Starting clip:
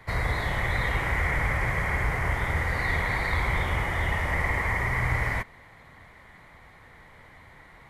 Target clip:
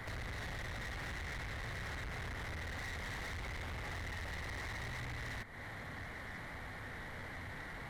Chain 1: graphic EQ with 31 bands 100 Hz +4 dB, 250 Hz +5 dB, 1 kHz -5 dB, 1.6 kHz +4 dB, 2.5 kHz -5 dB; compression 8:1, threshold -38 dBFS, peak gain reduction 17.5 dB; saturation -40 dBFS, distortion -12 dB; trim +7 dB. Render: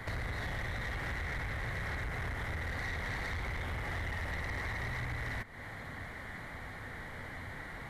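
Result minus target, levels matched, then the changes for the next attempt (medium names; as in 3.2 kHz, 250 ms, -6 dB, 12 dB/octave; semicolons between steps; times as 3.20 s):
saturation: distortion -6 dB
change: saturation -48 dBFS, distortion -6 dB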